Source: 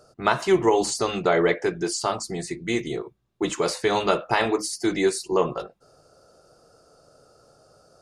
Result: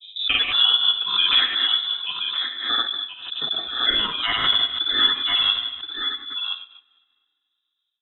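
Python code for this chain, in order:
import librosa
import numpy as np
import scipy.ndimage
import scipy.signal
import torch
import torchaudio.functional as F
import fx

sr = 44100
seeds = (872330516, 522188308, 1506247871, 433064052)

y = fx.rattle_buzz(x, sr, strikes_db=-31.0, level_db=-19.0)
y = fx.noise_reduce_blind(y, sr, reduce_db=15)
y = fx.env_lowpass(y, sr, base_hz=320.0, full_db=-19.5)
y = fx.peak_eq(y, sr, hz=2700.0, db=8.0, octaves=1.3)
y = fx.rev_double_slope(y, sr, seeds[0], early_s=0.81, late_s=2.8, knee_db=-27, drr_db=2.5)
y = fx.granulator(y, sr, seeds[1], grain_ms=100.0, per_s=20.0, spray_ms=100.0, spread_st=0)
y = y + 10.0 ** (-7.5 / 20.0) * np.pad(y, (int(1024 * sr / 1000.0), 0))[:len(y)]
y = fx.dynamic_eq(y, sr, hz=380.0, q=0.79, threshold_db=-37.0, ratio=4.0, max_db=7)
y = fx.freq_invert(y, sr, carrier_hz=3800)
y = fx.pre_swell(y, sr, db_per_s=81.0)
y = y * 10.0 ** (-4.5 / 20.0)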